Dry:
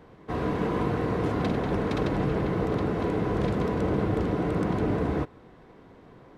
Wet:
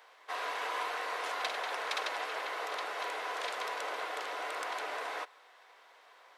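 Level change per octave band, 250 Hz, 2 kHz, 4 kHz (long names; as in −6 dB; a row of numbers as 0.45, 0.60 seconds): −31.5, +2.0, +5.0 decibels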